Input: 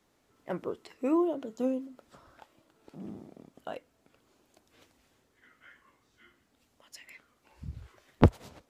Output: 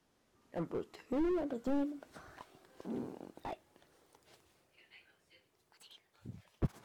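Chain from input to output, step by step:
gliding playback speed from 81% → 173%
source passing by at 0:02.54, 15 m/s, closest 19 metres
slew-rate limiting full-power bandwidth 7.3 Hz
level +3 dB

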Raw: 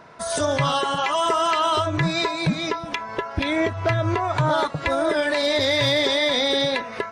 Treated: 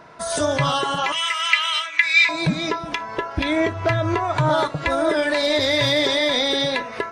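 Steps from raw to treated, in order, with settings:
0:01.12–0:02.29: high-pass with resonance 2,200 Hz, resonance Q 6.4
on a send: high-shelf EQ 9,000 Hz +10.5 dB + convolution reverb RT60 0.45 s, pre-delay 3 ms, DRR 13.5 dB
on the sum: level +1 dB

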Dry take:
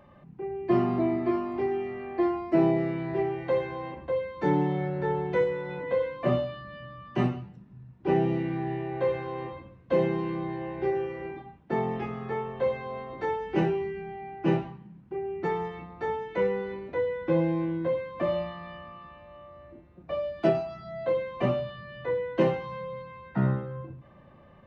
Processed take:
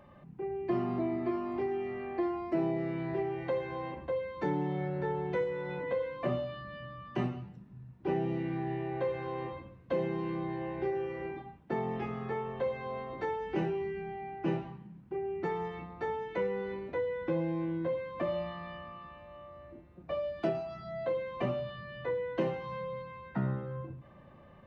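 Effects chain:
downward compressor 2 to 1, threshold −31 dBFS, peak gain reduction 7.5 dB
level −1.5 dB

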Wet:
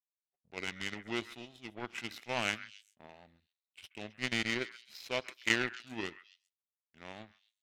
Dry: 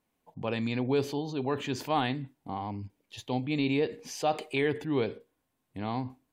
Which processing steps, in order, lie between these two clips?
meter weighting curve D
power curve on the samples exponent 2
speed change −17%
on a send: echo through a band-pass that steps 132 ms, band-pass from 1,600 Hz, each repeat 1.4 octaves, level −11.5 dB

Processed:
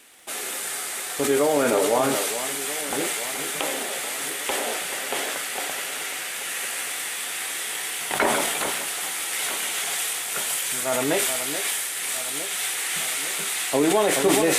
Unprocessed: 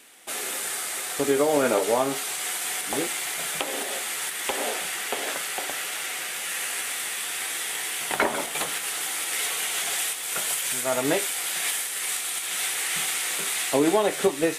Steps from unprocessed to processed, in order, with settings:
delay that swaps between a low-pass and a high-pass 429 ms, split 2,200 Hz, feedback 76%, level −10 dB
surface crackle 53 per second −40 dBFS
level that may fall only so fast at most 23 dB per second

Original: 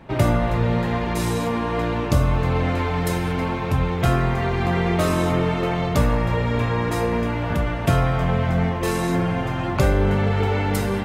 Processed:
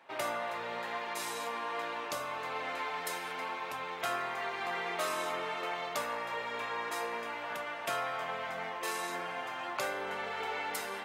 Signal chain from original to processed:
high-pass filter 760 Hz 12 dB per octave
level −7.5 dB

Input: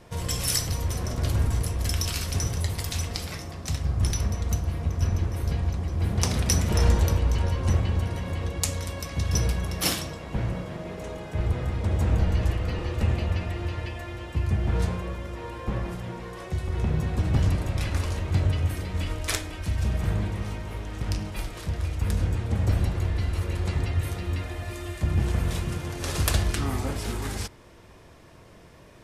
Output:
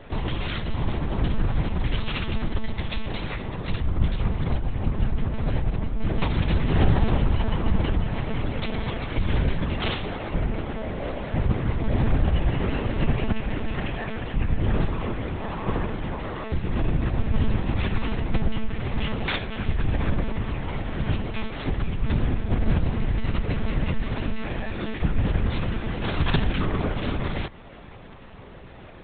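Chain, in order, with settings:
in parallel at +2 dB: downward compressor, threshold −33 dBFS, peak gain reduction 17 dB
on the sum: one-pitch LPC vocoder at 8 kHz 220 Hz

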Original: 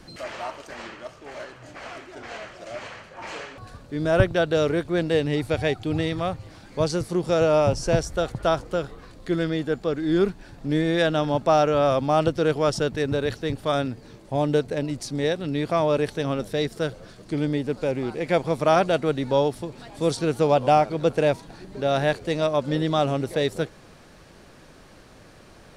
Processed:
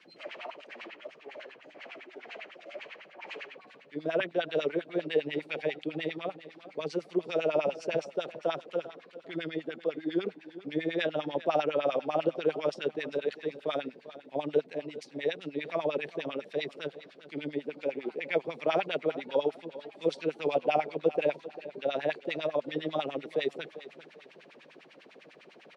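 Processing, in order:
high shelf with overshoot 1,900 Hz +9.5 dB, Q 1.5
reversed playback
upward compression, threshold −34 dBFS
reversed playback
elliptic high-pass filter 150 Hz
on a send: repeating echo 395 ms, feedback 32%, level −15.5 dB
on the sum: auto-filter band-pass sine 10 Hz 390–2,500 Hz
spectral tilt −2 dB per octave
level −3 dB

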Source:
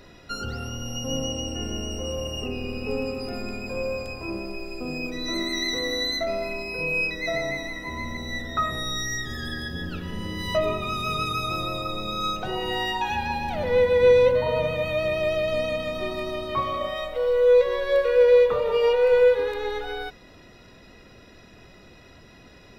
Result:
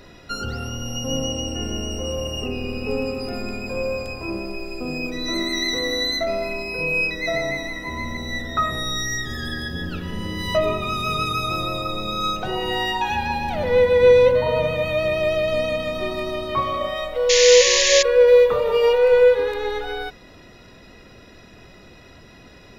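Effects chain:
0:17.29–0:18.03: sound drawn into the spectrogram noise 1,700–7,200 Hz −22 dBFS
0:18.27–0:18.98: high-shelf EQ 9,400 Hz +8.5 dB
level +3.5 dB

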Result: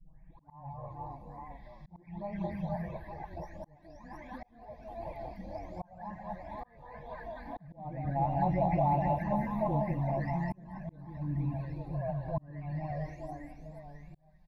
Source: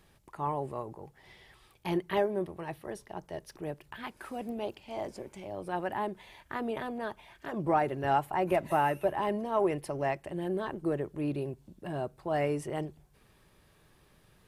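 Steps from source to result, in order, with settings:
every frequency bin delayed by itself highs late, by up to 668 ms
reverse bouncing-ball delay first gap 200 ms, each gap 1.4×, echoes 5
flanger swept by the level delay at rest 6.6 ms, full sweep at −24.5 dBFS
in parallel at −12 dB: soft clipping −30 dBFS, distortion −11 dB
on the sum: spectral tilt −3 dB per octave
on a send at −16.5 dB: convolution reverb RT60 1.9 s, pre-delay 71 ms
on the sum: volume swells 679 ms
phaser with its sweep stopped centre 2,000 Hz, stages 8

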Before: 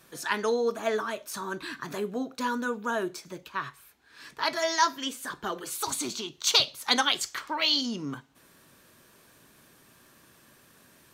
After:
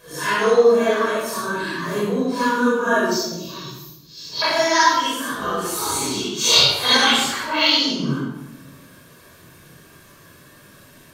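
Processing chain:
random phases in long frames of 200 ms
0:03.11–0:04.42: drawn EQ curve 330 Hz 0 dB, 1,700 Hz −21 dB, 4,400 Hz +10 dB, 6,700 Hz +11 dB, 9,600 Hz −17 dB, 14,000 Hz +11 dB
rectangular room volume 3,500 cubic metres, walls furnished, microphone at 5.4 metres
level +5.5 dB

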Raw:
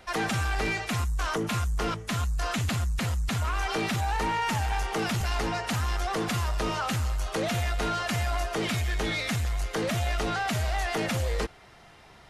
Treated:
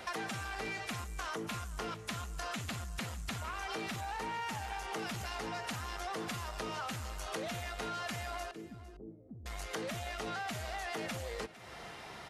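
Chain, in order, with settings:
high-pass filter 170 Hz 6 dB per octave
downward compressor 6 to 1, threshold −44 dBFS, peak gain reduction 16.5 dB
0:08.51–0:09.46: transistor ladder low-pass 420 Hz, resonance 40%
on a send: single-tap delay 455 ms −17.5 dB
on the sum: level +5.5 dB

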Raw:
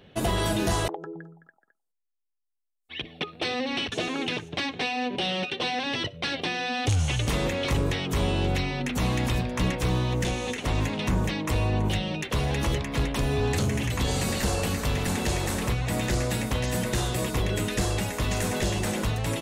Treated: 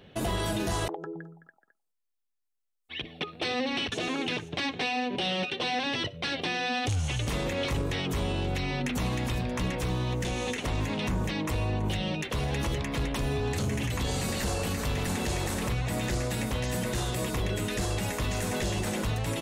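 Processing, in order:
brickwall limiter −22 dBFS, peak gain reduction 6.5 dB

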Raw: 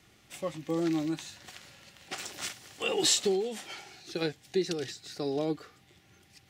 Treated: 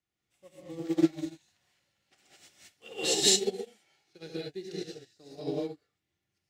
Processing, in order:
reverb whose tail is shaped and stops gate 240 ms rising, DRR −5 dB
dynamic equaliser 1,100 Hz, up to −7 dB, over −50 dBFS, Q 2.3
expander for the loud parts 2.5 to 1, over −37 dBFS

